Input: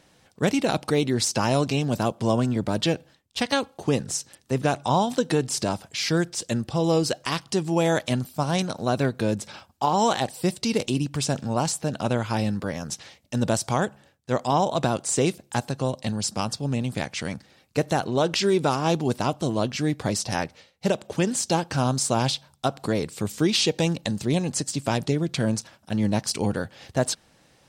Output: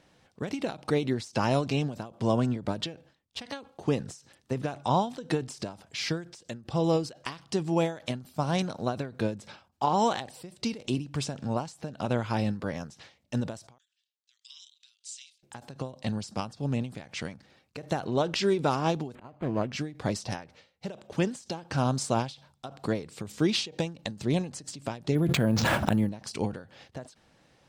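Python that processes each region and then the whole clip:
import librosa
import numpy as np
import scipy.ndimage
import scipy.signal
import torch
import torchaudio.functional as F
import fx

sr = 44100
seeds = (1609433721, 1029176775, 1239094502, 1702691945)

y = fx.chain(x, sr, fx.cheby2_highpass(hz=760.0, order=4, stop_db=70),
    fx.air_absorb(metres=70.0), at=(13.78, 15.43))
y = fx.chain(y, sr, fx.auto_swell(attack_ms=338.0),
    fx.resample_linear(factor=8), at=(19.15, 19.72))
y = fx.chain(y, sr, fx.air_absorb(metres=190.0),
    fx.resample_bad(factor=4, down='none', up='hold'),
    fx.env_flatten(amount_pct=100), at=(25.15, 26.09))
y = fx.high_shelf(y, sr, hz=7200.0, db=-11.0)
y = fx.end_taper(y, sr, db_per_s=150.0)
y = y * librosa.db_to_amplitude(-3.0)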